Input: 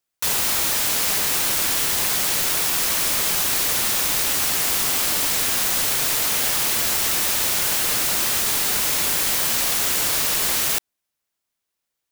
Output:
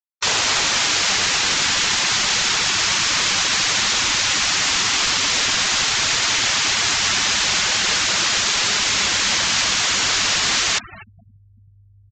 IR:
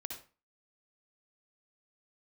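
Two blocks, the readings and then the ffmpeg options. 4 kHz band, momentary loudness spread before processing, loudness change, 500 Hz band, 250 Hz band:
+7.5 dB, 0 LU, +1.5 dB, +0.5 dB, +2.0 dB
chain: -filter_complex "[0:a]aeval=exprs='val(0)+0.00794*(sin(2*PI*50*n/s)+sin(2*PI*2*50*n/s)/2+sin(2*PI*3*50*n/s)/3+sin(2*PI*4*50*n/s)/4+sin(2*PI*5*50*n/s)/5)':channel_layout=same,lowshelf=frequency=210:gain=-10.5,asplit=2[link_01][link_02];[link_02]adelay=250,lowpass=frequency=1200:poles=1,volume=-4dB,asplit=2[link_03][link_04];[link_04]adelay=250,lowpass=frequency=1200:poles=1,volume=0.49,asplit=2[link_05][link_06];[link_06]adelay=250,lowpass=frequency=1200:poles=1,volume=0.49,asplit=2[link_07][link_08];[link_08]adelay=250,lowpass=frequency=1200:poles=1,volume=0.49,asplit=2[link_09][link_10];[link_10]adelay=250,lowpass=frequency=1200:poles=1,volume=0.49,asplit=2[link_11][link_12];[link_12]adelay=250,lowpass=frequency=1200:poles=1,volume=0.49[link_13];[link_01][link_03][link_05][link_07][link_09][link_11][link_13]amix=inputs=7:normalize=0,acrossover=split=330|870|5900[link_14][link_15][link_16][link_17];[link_17]asoftclip=type=tanh:threshold=-22.5dB[link_18];[link_14][link_15][link_16][link_18]amix=inputs=4:normalize=0,adynamicequalizer=threshold=0.00501:dfrequency=520:dqfactor=0.7:tfrequency=520:tqfactor=0.7:attack=5:release=100:ratio=0.375:range=3.5:mode=cutabove:tftype=bell,afftfilt=real='re*gte(hypot(re,im),0.0282)':imag='im*gte(hypot(re,im),0.0282)':win_size=1024:overlap=0.75,aresample=16000,aresample=44100,volume=8.5dB"

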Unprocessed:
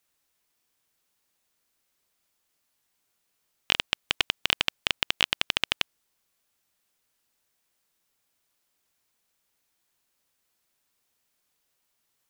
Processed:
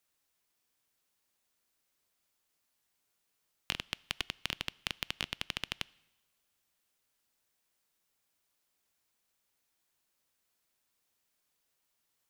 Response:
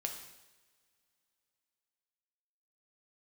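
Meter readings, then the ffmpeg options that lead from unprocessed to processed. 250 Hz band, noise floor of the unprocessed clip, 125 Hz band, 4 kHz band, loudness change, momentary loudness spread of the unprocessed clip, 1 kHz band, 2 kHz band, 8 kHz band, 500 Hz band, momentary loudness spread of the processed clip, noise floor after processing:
−7.0 dB, −76 dBFS, −4.0 dB, −12.0 dB, −11.5 dB, 4 LU, −11.0 dB, −11.5 dB, −9.0 dB, −11.5 dB, 3 LU, −80 dBFS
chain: -filter_complex "[0:a]acrossover=split=330[link_01][link_02];[link_02]acompressor=threshold=-27dB:ratio=10[link_03];[link_01][link_03]amix=inputs=2:normalize=0,asplit=2[link_04][link_05];[1:a]atrim=start_sample=2205[link_06];[link_05][link_06]afir=irnorm=-1:irlink=0,volume=-17dB[link_07];[link_04][link_07]amix=inputs=2:normalize=0,volume=-5dB"

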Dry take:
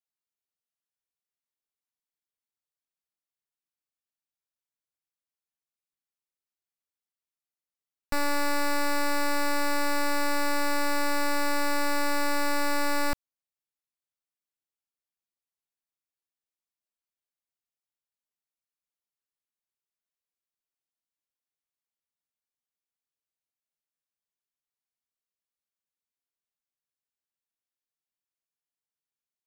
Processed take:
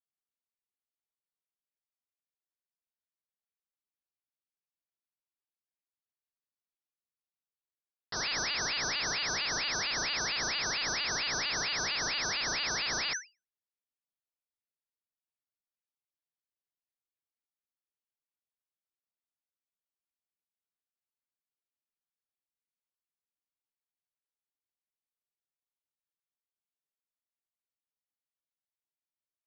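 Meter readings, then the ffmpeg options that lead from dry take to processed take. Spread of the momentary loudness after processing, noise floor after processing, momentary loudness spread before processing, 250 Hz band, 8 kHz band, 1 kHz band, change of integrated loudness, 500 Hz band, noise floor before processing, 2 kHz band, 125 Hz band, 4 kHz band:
2 LU, below −85 dBFS, 1 LU, −15.5 dB, +3.0 dB, −10.0 dB, −2.5 dB, −12.0 dB, below −85 dBFS, −2.5 dB, +0.5 dB, +5.0 dB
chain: -af "aeval=exprs='0.0668*(cos(1*acos(clip(val(0)/0.0668,-1,1)))-cos(1*PI/2))+0.0168*(cos(6*acos(clip(val(0)/0.0668,-1,1)))-cos(6*PI/2))':channel_layout=same,lowpass=frequency=3200:width_type=q:width=0.5098,lowpass=frequency=3200:width_type=q:width=0.6013,lowpass=frequency=3200:width_type=q:width=0.9,lowpass=frequency=3200:width_type=q:width=2.563,afreqshift=-3800,aeval=exprs='val(0)*sin(2*PI*1600*n/s+1600*0.45/4.4*sin(2*PI*4.4*n/s))':channel_layout=same,volume=-4dB"

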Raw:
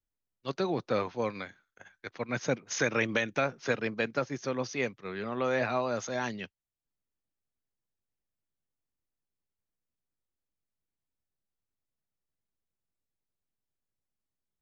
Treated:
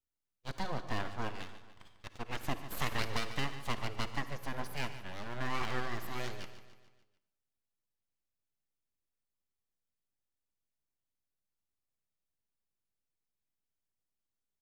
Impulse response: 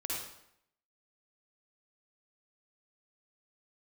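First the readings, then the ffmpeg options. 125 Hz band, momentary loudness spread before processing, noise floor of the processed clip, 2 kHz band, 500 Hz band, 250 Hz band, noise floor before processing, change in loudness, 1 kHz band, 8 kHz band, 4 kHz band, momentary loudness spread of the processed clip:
−2.0 dB, 13 LU, below −85 dBFS, −7.0 dB, −13.5 dB, −9.0 dB, below −85 dBFS, −7.5 dB, −4.0 dB, can't be measured, −0.5 dB, 14 LU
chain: -filter_complex "[0:a]aeval=exprs='abs(val(0))':channel_layout=same,aecho=1:1:146|292|438|584|730:0.211|0.11|0.0571|0.0297|0.0155,asplit=2[link_01][link_02];[1:a]atrim=start_sample=2205[link_03];[link_02][link_03]afir=irnorm=-1:irlink=0,volume=-13dB[link_04];[link_01][link_04]amix=inputs=2:normalize=0,volume=-5.5dB"

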